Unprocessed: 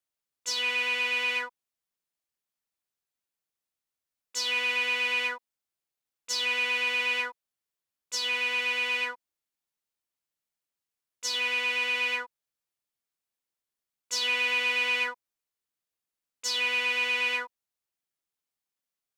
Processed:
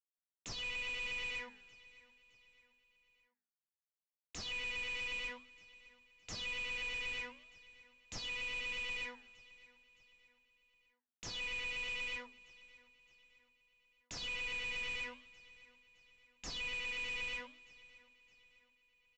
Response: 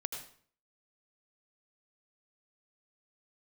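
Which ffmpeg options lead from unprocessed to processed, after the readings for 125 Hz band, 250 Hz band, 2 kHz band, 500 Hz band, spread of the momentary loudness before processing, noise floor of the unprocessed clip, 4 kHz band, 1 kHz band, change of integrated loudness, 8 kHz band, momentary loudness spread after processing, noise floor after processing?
no reading, -7.0 dB, -13.0 dB, -13.5 dB, 9 LU, under -85 dBFS, -13.0 dB, -16.5 dB, -13.0 dB, -14.5 dB, 20 LU, under -85 dBFS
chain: -filter_complex "[0:a]bandreject=f=50:t=h:w=6,bandreject=f=100:t=h:w=6,bandreject=f=150:t=h:w=6,bandreject=f=200:t=h:w=6,bandreject=f=250:t=h:w=6,agate=range=0.0224:threshold=0.00112:ratio=3:detection=peak,aexciter=amount=3.4:drive=5.5:freq=2100,equalizer=f=1400:t=o:w=0.36:g=-7.5,acrossover=split=220[s0][s1];[s1]acompressor=threshold=0.0126:ratio=2.5[s2];[s0][s2]amix=inputs=2:normalize=0,aresample=16000,asoftclip=type=hard:threshold=0.02,aresample=44100,aemphasis=mode=reproduction:type=riaa,flanger=delay=4.3:depth=10:regen=-88:speed=0.9:shape=triangular,aecho=1:1:615|1230|1845:0.0944|0.0444|0.0209,volume=1.58"

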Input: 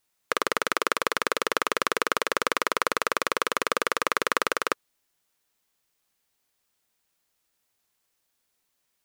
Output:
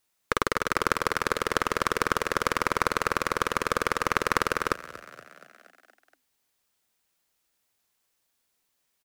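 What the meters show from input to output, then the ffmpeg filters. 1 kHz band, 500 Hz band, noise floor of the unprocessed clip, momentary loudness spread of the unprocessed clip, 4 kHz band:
0.0 dB, -0.5 dB, -76 dBFS, 2 LU, -3.5 dB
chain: -filter_complex "[0:a]aeval=exprs='0.841*(cos(1*acos(clip(val(0)/0.841,-1,1)))-cos(1*PI/2))+0.133*(cos(4*acos(clip(val(0)/0.841,-1,1)))-cos(4*PI/2))':c=same,asplit=7[s0][s1][s2][s3][s4][s5][s6];[s1]adelay=236,afreqshift=43,volume=0.133[s7];[s2]adelay=472,afreqshift=86,volume=0.0841[s8];[s3]adelay=708,afreqshift=129,volume=0.0531[s9];[s4]adelay=944,afreqshift=172,volume=0.0335[s10];[s5]adelay=1180,afreqshift=215,volume=0.0209[s11];[s6]adelay=1416,afreqshift=258,volume=0.0132[s12];[s0][s7][s8][s9][s10][s11][s12]amix=inputs=7:normalize=0"

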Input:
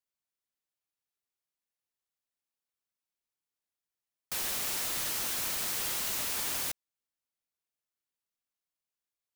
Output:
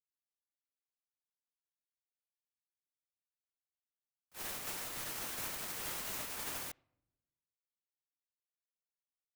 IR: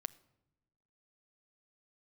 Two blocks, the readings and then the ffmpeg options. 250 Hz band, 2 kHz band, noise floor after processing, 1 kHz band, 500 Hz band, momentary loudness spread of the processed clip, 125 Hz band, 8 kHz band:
-4.5 dB, -6.5 dB, under -85 dBFS, -5.0 dB, -4.5 dB, 6 LU, -4.0 dB, -9.5 dB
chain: -filter_complex "[0:a]agate=range=0.00316:threshold=0.0355:ratio=16:detection=peak,asplit=2[s0][s1];[1:a]atrim=start_sample=2205,lowpass=2800[s2];[s1][s2]afir=irnorm=-1:irlink=0,volume=0.944[s3];[s0][s3]amix=inputs=2:normalize=0,volume=5.31"

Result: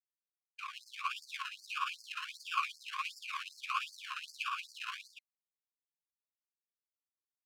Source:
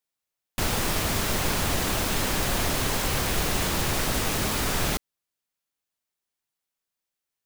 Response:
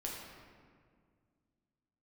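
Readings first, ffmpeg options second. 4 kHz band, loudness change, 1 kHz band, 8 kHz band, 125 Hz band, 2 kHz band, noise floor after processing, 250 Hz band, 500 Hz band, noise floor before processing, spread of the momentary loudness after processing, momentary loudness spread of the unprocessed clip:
-14.0 dB, -14.5 dB, -8.5 dB, -26.0 dB, under -40 dB, -10.5 dB, under -85 dBFS, under -40 dB, under -40 dB, under -85 dBFS, 10 LU, 2 LU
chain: -filter_complex "[0:a]agate=range=0.0224:threshold=0.1:ratio=3:detection=peak,highpass=f=43:w=0.5412,highpass=f=43:w=1.3066,aecho=1:1:137|215.7:0.501|0.282,alimiter=limit=0.0708:level=0:latency=1:release=453,dynaudnorm=f=600:g=3:m=2,tremolo=f=17:d=0.57,acrusher=samples=30:mix=1:aa=0.000001:lfo=1:lforange=18:lforate=1.5,asplit=3[s0][s1][s2];[s0]bandpass=f=730:t=q:w=8,volume=1[s3];[s1]bandpass=f=1090:t=q:w=8,volume=0.501[s4];[s2]bandpass=f=2440:t=q:w=8,volume=0.355[s5];[s3][s4][s5]amix=inputs=3:normalize=0,afftfilt=real='re*gte(b*sr/1024,960*pow(4400/960,0.5+0.5*sin(2*PI*2.6*pts/sr)))':imag='im*gte(b*sr/1024,960*pow(4400/960,0.5+0.5*sin(2*PI*2.6*pts/sr)))':win_size=1024:overlap=0.75,volume=7.08"

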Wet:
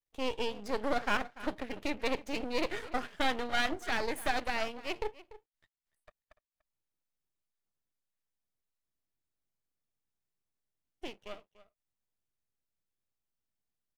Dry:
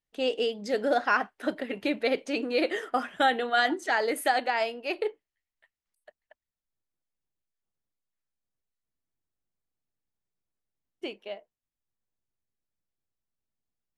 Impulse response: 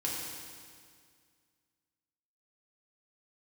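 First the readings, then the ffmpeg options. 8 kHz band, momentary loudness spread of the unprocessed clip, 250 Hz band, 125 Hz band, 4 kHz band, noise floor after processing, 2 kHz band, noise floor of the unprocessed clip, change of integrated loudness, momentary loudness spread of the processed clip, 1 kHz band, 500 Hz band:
-3.0 dB, 13 LU, -5.5 dB, no reading, -4.5 dB, under -85 dBFS, -6.5 dB, under -85 dBFS, -6.5 dB, 13 LU, -7.5 dB, -8.0 dB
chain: -filter_complex "[0:a]asplit=2[s0][s1];[s1]adelay=291.5,volume=0.141,highshelf=f=4000:g=-6.56[s2];[s0][s2]amix=inputs=2:normalize=0,aeval=exprs='max(val(0),0)':c=same,volume=0.75"

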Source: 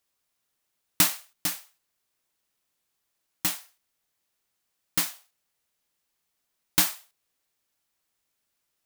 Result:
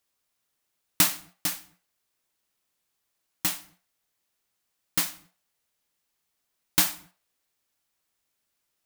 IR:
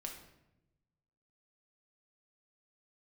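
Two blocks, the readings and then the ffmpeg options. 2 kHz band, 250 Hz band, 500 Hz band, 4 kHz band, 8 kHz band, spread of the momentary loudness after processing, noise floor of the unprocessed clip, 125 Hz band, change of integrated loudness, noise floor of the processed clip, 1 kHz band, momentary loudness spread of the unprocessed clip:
0.0 dB, 0.0 dB, 0.0 dB, 0.0 dB, 0.0 dB, 13 LU, -79 dBFS, 0.0 dB, 0.0 dB, -79 dBFS, 0.0 dB, 13 LU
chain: -filter_complex "[0:a]asplit=2[s0][s1];[s1]highshelf=f=3500:g=-11.5[s2];[1:a]atrim=start_sample=2205,afade=t=out:st=0.26:d=0.01,atrim=end_sample=11907,adelay=72[s3];[s2][s3]afir=irnorm=-1:irlink=0,volume=0.178[s4];[s0][s4]amix=inputs=2:normalize=0"

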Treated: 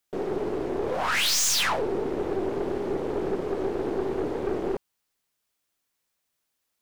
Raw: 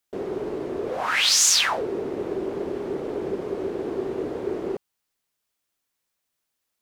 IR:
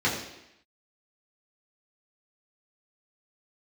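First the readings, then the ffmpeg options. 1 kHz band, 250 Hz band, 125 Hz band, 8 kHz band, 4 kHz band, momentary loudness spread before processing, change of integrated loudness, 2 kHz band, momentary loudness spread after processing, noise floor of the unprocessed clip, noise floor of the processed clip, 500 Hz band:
0.0 dB, +0.5 dB, +2.5 dB, -6.0 dB, -5.0 dB, 14 LU, -3.0 dB, -2.5 dB, 9 LU, -80 dBFS, -79 dBFS, 0.0 dB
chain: -af "aeval=exprs='(tanh(12.6*val(0)+0.8)-tanh(0.8))/12.6':c=same,aeval=exprs='0.133*sin(PI/2*1.41*val(0)/0.133)':c=same,volume=0.891"

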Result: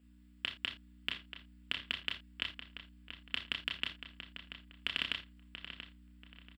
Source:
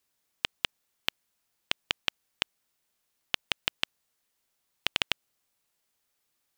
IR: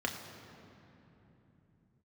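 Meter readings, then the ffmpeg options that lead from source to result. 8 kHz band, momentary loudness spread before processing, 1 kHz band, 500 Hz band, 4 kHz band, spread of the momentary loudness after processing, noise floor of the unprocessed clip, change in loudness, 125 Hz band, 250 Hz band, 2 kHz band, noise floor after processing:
-17.0 dB, 5 LU, -9.5 dB, -11.0 dB, -5.5 dB, 16 LU, -78 dBFS, -6.5 dB, -2.0 dB, -2.0 dB, -4.5 dB, -61 dBFS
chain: -filter_complex "[0:a]equalizer=f=500:t=o:w=0.33:g=-9,equalizer=f=800:t=o:w=0.33:g=-11,equalizer=f=6300:t=o:w=0.33:g=-12,equalizer=f=12500:t=o:w=0.33:g=-8,alimiter=limit=0.15:level=0:latency=1:release=102,aeval=exprs='val(0)+0.000708*(sin(2*PI*60*n/s)+sin(2*PI*2*60*n/s)/2+sin(2*PI*3*60*n/s)/3+sin(2*PI*4*60*n/s)/4+sin(2*PI*5*60*n/s)/5)':c=same,asplit=2[s0][s1];[s1]adelay=33,volume=0.398[s2];[s0][s2]amix=inputs=2:normalize=0,asplit=2[s3][s4];[s4]adelay=684,lowpass=f=3300:p=1,volume=0.335,asplit=2[s5][s6];[s6]adelay=684,lowpass=f=3300:p=1,volume=0.33,asplit=2[s7][s8];[s8]adelay=684,lowpass=f=3300:p=1,volume=0.33,asplit=2[s9][s10];[s10]adelay=684,lowpass=f=3300:p=1,volume=0.33[s11];[s3][s5][s7][s9][s11]amix=inputs=5:normalize=0[s12];[1:a]atrim=start_sample=2205,atrim=end_sample=3969[s13];[s12][s13]afir=irnorm=-1:irlink=0,volume=0.891"

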